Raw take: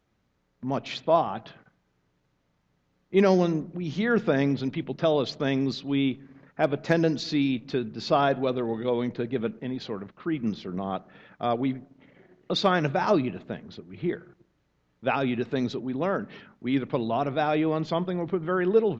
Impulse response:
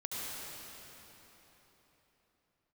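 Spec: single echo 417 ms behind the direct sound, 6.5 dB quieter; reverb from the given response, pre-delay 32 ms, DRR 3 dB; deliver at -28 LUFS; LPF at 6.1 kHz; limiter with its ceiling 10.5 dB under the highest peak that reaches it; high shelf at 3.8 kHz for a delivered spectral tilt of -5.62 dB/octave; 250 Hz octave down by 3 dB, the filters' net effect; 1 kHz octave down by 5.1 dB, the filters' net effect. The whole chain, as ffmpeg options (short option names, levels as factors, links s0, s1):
-filter_complex "[0:a]lowpass=6100,equalizer=f=250:t=o:g=-3.5,equalizer=f=1000:t=o:g=-7,highshelf=f=3800:g=-5.5,alimiter=limit=0.0891:level=0:latency=1,aecho=1:1:417:0.473,asplit=2[s0][s1];[1:a]atrim=start_sample=2205,adelay=32[s2];[s1][s2]afir=irnorm=-1:irlink=0,volume=0.501[s3];[s0][s3]amix=inputs=2:normalize=0,volume=1.33"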